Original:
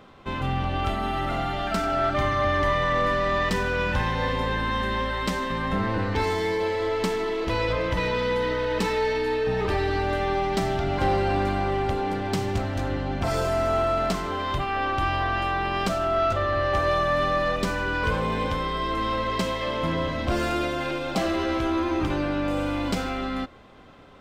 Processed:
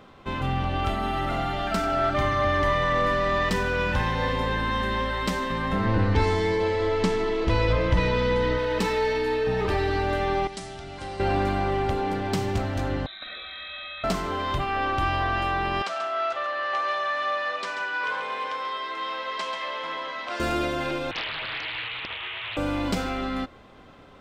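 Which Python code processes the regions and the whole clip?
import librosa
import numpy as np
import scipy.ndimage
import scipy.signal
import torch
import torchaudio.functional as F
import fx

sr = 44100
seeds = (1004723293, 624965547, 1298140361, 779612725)

y = fx.chain(x, sr, fx.lowpass(hz=8500.0, slope=12),
    fx.low_shelf(hz=180.0, db=8.5), at=(5.85, 8.58))
y = fx.chain(y, sr, fx.brickwall_lowpass(high_hz=11000.0),
    fx.pre_emphasis(coefficient=0.8), at=(10.47, 11.2))
y = fx.chain(y, sr, fx.low_shelf(hz=430.0, db=-6.5),
    fx.freq_invert(carrier_hz=3900),
    fx.fixed_phaser(hz=600.0, stages=8), at=(13.06, 14.04))
y = fx.chain(y, sr, fx.highpass(hz=820.0, slope=12),
    fx.air_absorb(metres=85.0),
    fx.echo_single(ms=137, db=-8.5), at=(15.82, 20.4))
y = fx.chain(y, sr, fx.highpass(hz=840.0, slope=12),
    fx.freq_invert(carrier_hz=3600),
    fx.doppler_dist(depth_ms=0.95), at=(21.11, 22.57))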